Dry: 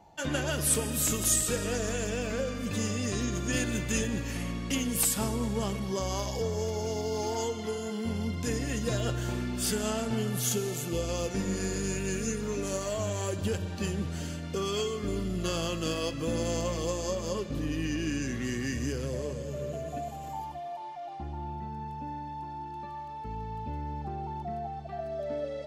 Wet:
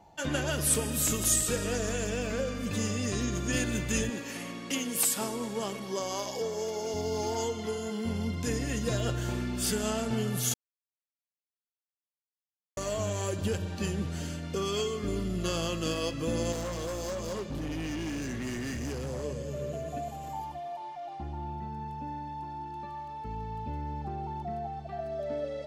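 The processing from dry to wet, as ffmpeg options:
-filter_complex "[0:a]asettb=1/sr,asplit=3[a][b][c];[a]atrim=end=4.104[d];[b]atrim=start=4.1:end=6.94,asetpts=PTS-STARTPTS,afade=t=in:d=0.004:c=qsin,afade=t=out:st=2.836:d=0.004:c=qsin,highpass=260[e];[c]atrim=start=6.936[f];[d][e]acrossfade=d=0.004:c1=hsin:c2=qsin[g];[g][f]acrossfade=d=0.004:c1=qsin:c2=hsin,asettb=1/sr,asplit=3[h][i][j];[h]atrim=end=16.524[k];[i]atrim=start=16.52:end=19.24,asetpts=PTS-STARTPTS,afade=t=in:d=0.004:c=qsin,afade=t=out:st=2.716:d=0.004:c=qsin,volume=31.5dB,asoftclip=hard,volume=-31.5dB[l];[j]atrim=start=19.236[m];[k][l]acrossfade=d=0.004:c1=hsin:c2=qsin[n];[n][m]acrossfade=d=0.004:c1=qsin:c2=hsin,asplit=3[o][p][q];[o]atrim=end=10.54,asetpts=PTS-STARTPTS,afade=t=out:st=10.536:d=0.004:c=hsin[r];[p]atrim=start=10.54:end=12.77,asetpts=PTS-STARTPTS,volume=0[s];[q]atrim=start=12.77,asetpts=PTS-STARTPTS,afade=t=in:d=0.004:c=hsin[t];[r][s][t]concat=n=3:v=0:a=1"

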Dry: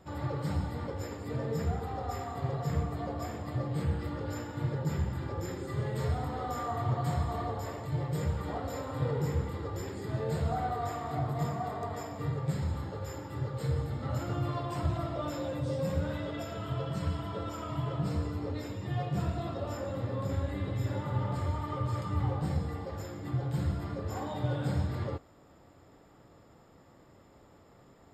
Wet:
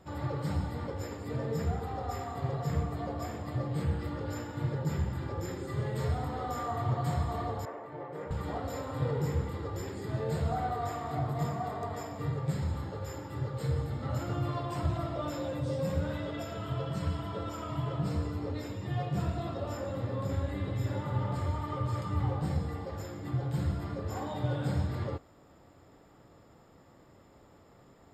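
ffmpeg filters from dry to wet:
-filter_complex "[0:a]asettb=1/sr,asplit=3[a][b][c];[a]atrim=end=7.654[d];[b]atrim=start=7.65:end=8.31,asetpts=PTS-STARTPTS,afade=t=in:d=0.004:c=qsin,afade=t=out:st=0.656:d=0.004:c=qsin,acrossover=split=270 2100:gain=0.0708 1 0.0891[e][f][g];[e][f][g]amix=inputs=3:normalize=0[h];[c]atrim=start=8.306[i];[d][h]acrossfade=d=0.004:c1=hsin:c2=qsin[j];[j][i]acrossfade=d=0.004:c1=qsin:c2=hsin"

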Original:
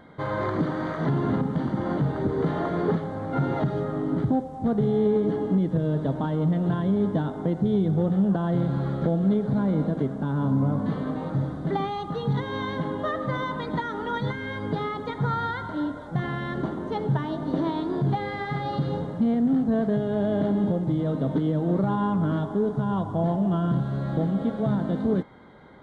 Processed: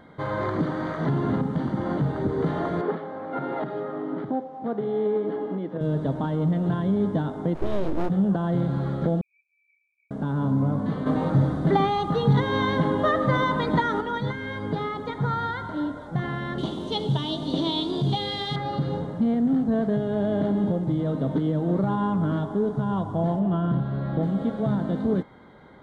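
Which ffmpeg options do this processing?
-filter_complex "[0:a]asettb=1/sr,asplit=3[a][b][c];[a]atrim=end=2.814[d];[b]atrim=start=2.81:end=5.81,asetpts=PTS-STARTPTS,afade=t=in:d=0.004:c=qsin,afade=t=out:st=2.996:d=0.004:c=qsin,highpass=320,lowpass=3k[e];[c]atrim=start=5.806[f];[d][e]acrossfade=d=0.004:c1=hsin:c2=qsin[g];[g][f]acrossfade=d=0.004:c1=qsin:c2=hsin,asplit=3[h][i][j];[h]afade=t=out:st=7.54:d=0.02[k];[i]aeval=exprs='abs(val(0))':c=same,afade=t=in:st=7.54:d=0.02,afade=t=out:st=8.08:d=0.02[l];[j]afade=t=in:st=8.08:d=0.02[m];[k][l][m]amix=inputs=3:normalize=0,asettb=1/sr,asplit=3[n][o][p];[n]atrim=end=9.214[q];[o]atrim=start=9.21:end=10.11,asetpts=PTS-STARTPTS,afade=t=in:d=0.004:c=qsin,afade=t=out:st=0.896:d=0.004:c=qsin,asuperpass=centerf=2400:order=20:qfactor=7.7[r];[p]atrim=start=10.106[s];[q][r]acrossfade=d=0.004:c1=hsin:c2=qsin[t];[t][s]acrossfade=d=0.004:c1=qsin:c2=hsin,asettb=1/sr,asplit=3[u][v][w];[u]atrim=end=11.064[x];[v]atrim=start=11.06:end=14.01,asetpts=PTS-STARTPTS,afade=t=in:d=0.004:c=qsin,afade=t=out:st=2.946:d=0.004:c=qsin,acontrast=56[y];[w]atrim=start=14.006[z];[x][y]acrossfade=d=0.004:c1=hsin:c2=qsin[aa];[aa][z]acrossfade=d=0.004:c1=qsin:c2=hsin,asettb=1/sr,asplit=3[ab][ac][ad];[ab]atrim=end=16.584[ae];[ac]atrim=start=16.58:end=18.56,asetpts=PTS-STARTPTS,afade=t=in:d=0.004:c=qsin,afade=t=out:st=1.976:d=0.004:c=qsin,highshelf=f=2.4k:t=q:w=3:g=10.5[af];[ad]atrim=start=18.556[ag];[ae][af]acrossfade=d=0.004:c1=hsin:c2=qsin[ah];[ah][ag]acrossfade=d=0.004:c1=qsin:c2=hsin,asettb=1/sr,asplit=3[ai][aj][ak];[ai]atrim=end=23.394[al];[aj]atrim=start=23.39:end=24.23,asetpts=PTS-STARTPTS,afade=t=in:d=0.004:c=qsin,afade=t=out:st=0.836:d=0.004:c=qsin,lowpass=3.6k[am];[ak]atrim=start=24.226[an];[al][am]acrossfade=d=0.004:c1=hsin:c2=qsin[ao];[ao][an]acrossfade=d=0.004:c1=qsin:c2=hsin"

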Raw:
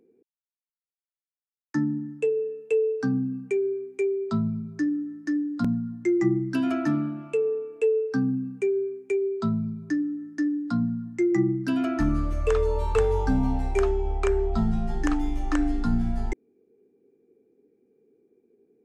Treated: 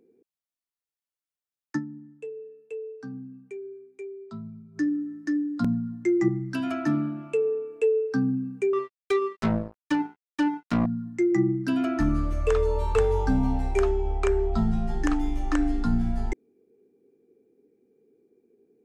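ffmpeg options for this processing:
-filter_complex "[0:a]asettb=1/sr,asplit=3[a][b][c];[a]atrim=end=6.284[d];[b]atrim=start=6.28:end=6.86,asetpts=PTS-STARTPTS,afade=t=in:d=0.004:c=qsin,afade=t=out:st=0.576:d=0.004:c=qsin,equalizer=f=340:w=1.5:g=-7[e];[c]atrim=start=6.856[f];[d][e]acrossfade=d=0.004:c1=hsin:c2=qsin[g];[g][f]acrossfade=d=0.004:c1=qsin:c2=hsin,asettb=1/sr,asplit=3[h][i][j];[h]atrim=end=8.734[k];[i]atrim=start=8.73:end=10.86,asetpts=PTS-STARTPTS,afade=t=in:d=0.004:c=qsin,afade=t=out:st=2.126:d=0.004:c=qsin,acrusher=bits=3:mix=0:aa=0.5[l];[j]atrim=start=10.856[m];[k][l]acrossfade=d=0.004:c1=hsin:c2=qsin[n];[n][m]acrossfade=d=0.004:c1=qsin:c2=hsin,asplit=3[o][p][q];[o]atrim=end=2.06,asetpts=PTS-STARTPTS,afade=t=out:st=1.76:d=0.3:c=exp:silence=0.223872[r];[p]atrim=start=2.06:end=4.49,asetpts=PTS-STARTPTS,volume=-13dB[s];[q]atrim=start=4.49,asetpts=PTS-STARTPTS,afade=t=in:d=0.3:c=exp:silence=0.223872[t];[r][s][t]concat=n=3:v=0:a=1"

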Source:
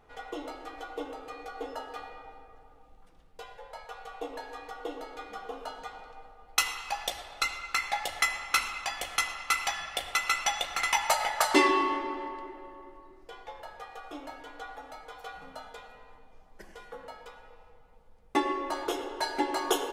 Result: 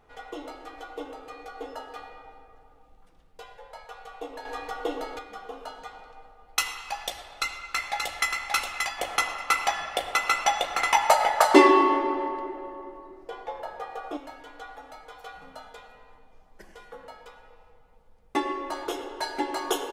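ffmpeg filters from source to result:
-filter_complex "[0:a]asettb=1/sr,asplit=3[a][b][c];[a]atrim=end=4.454[d];[b]atrim=start=4.45:end=5.19,asetpts=PTS-STARTPTS,afade=t=in:d=0.004:c=qsin,afade=t=out:st=0.736:d=0.004:c=qsin,acontrast=87[e];[c]atrim=start=5.186[f];[d][e]acrossfade=d=0.004:c1=hsin:c2=qsin[g];[g][f]acrossfade=d=0.004:c1=qsin:c2=hsin,asplit=2[h][i];[i]afade=t=in:st=7.16:d=0.01,afade=t=out:st=8.29:d=0.01,aecho=0:1:580|1160:0.668344|0.0668344[j];[h][j]amix=inputs=2:normalize=0,asettb=1/sr,asplit=3[k][l][m];[k]atrim=end=8.984[n];[l]atrim=start=8.98:end=14.17,asetpts=PTS-STARTPTS,afade=t=in:d=0.004:c=qsin,afade=t=out:st=5.186:d=0.004:c=qsin,equalizer=f=510:w=0.44:g=10[o];[m]atrim=start=14.166[p];[n][o]acrossfade=d=0.004:c1=hsin:c2=qsin[q];[q][p]acrossfade=d=0.004:c1=qsin:c2=hsin"

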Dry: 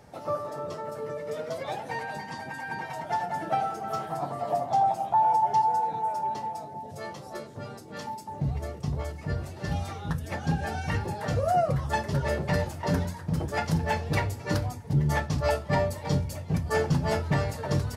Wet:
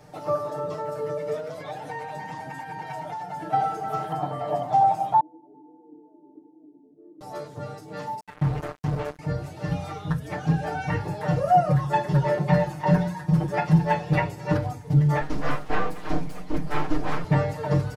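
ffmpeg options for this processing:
-filter_complex "[0:a]asplit=3[a][b][c];[a]afade=t=out:st=1.36:d=0.02[d];[b]acompressor=threshold=-34dB:ratio=6:attack=3.2:release=140:knee=1:detection=peak,afade=t=in:st=1.36:d=0.02,afade=t=out:st=3.52:d=0.02[e];[c]afade=t=in:st=3.52:d=0.02[f];[d][e][f]amix=inputs=3:normalize=0,asettb=1/sr,asplit=3[g][h][i];[g]atrim=end=4.124[j];[h]atrim=start=4.12:end=4.62,asetpts=PTS-STARTPTS,afade=t=in:d=0.004:c=qsin,afade=t=out:st=0.496:d=0.004:c=qsin,aeval=exprs='val(0)+0.01*sin(2*PI*3100*n/s)':c=same[k];[i]atrim=start=4.616[l];[j][k]acrossfade=d=0.004:c1=hsin:c2=qsin[m];[m][l]acrossfade=d=0.004:c1=qsin:c2=hsin,asettb=1/sr,asplit=3[n][o][p];[n]atrim=end=5.204[q];[o]atrim=start=5.2:end=7.21,asetpts=PTS-STARTPTS,afade=t=in:d=0.004:c=qsin,afade=t=out:st=2.006:d=0.004:c=qsin,asuperpass=centerf=310:order=4:qfactor=3.7[r];[p]atrim=start=7.206[s];[q][r]acrossfade=d=0.004:c1=hsin:c2=qsin[t];[t][s]acrossfade=d=0.004:c1=qsin:c2=hsin,asettb=1/sr,asplit=3[u][v][w];[u]atrim=end=8.204[x];[v]atrim=start=8.2:end=9.19,asetpts=PTS-STARTPTS,afade=t=in:d=0.004:c=qsin,afade=t=out:st=0.986:d=0.004:c=qsin,acrusher=bits=4:mix=0:aa=0.5[y];[w]atrim=start=9.186[z];[x][y]acrossfade=d=0.004:c1=hsin:c2=qsin[aa];[aa][z]acrossfade=d=0.004:c1=qsin:c2=hsin,asettb=1/sr,asplit=3[ab][ac][ad];[ab]atrim=end=11.244[ae];[ac]atrim=start=11.24:end=14.52,asetpts=PTS-STARTPTS,afade=t=in:d=0.004:c=qsin,afade=t=out:st=3.276:d=0.004:c=qsin,aecho=1:1:5.5:0.64,atrim=end_sample=144648[af];[ad]atrim=start=14.516[ag];[ae][af]acrossfade=d=0.004:c1=hsin:c2=qsin[ah];[ah][ag]acrossfade=d=0.004:c1=qsin:c2=hsin,asettb=1/sr,asplit=3[ai][aj][ak];[ai]atrim=end=15.214[al];[aj]atrim=start=15.21:end=17.24,asetpts=PTS-STARTPTS,afade=t=in:d=0.004:c=qsin,afade=t=out:st=2.026:d=0.004:c=qsin,aeval=exprs='abs(val(0))':c=same[am];[ak]atrim=start=17.236[an];[al][am]acrossfade=d=0.004:c1=hsin:c2=qsin[ao];[ao][an]acrossfade=d=0.004:c1=qsin:c2=hsin,acrossover=split=2800[ap][aq];[aq]acompressor=threshold=-53dB:ratio=4:attack=1:release=60[ar];[ap][ar]amix=inputs=2:normalize=0,aecho=1:1:6.6:1"

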